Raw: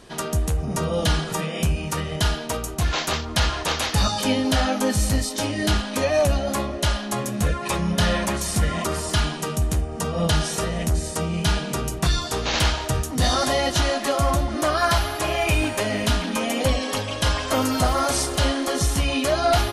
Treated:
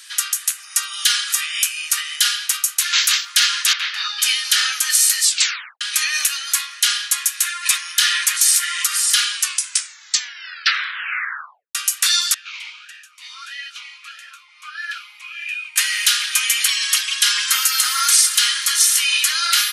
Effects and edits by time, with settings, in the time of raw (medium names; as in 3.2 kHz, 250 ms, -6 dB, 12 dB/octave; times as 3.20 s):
3.73–4.22 s: distance through air 300 m
5.24 s: tape stop 0.57 s
9.32 s: tape stop 2.43 s
12.34–15.76 s: talking filter e-u 1.6 Hz
whole clip: steep high-pass 1.4 kHz 36 dB/octave; tilt EQ +3 dB/octave; loudness maximiser +7 dB; trim -1 dB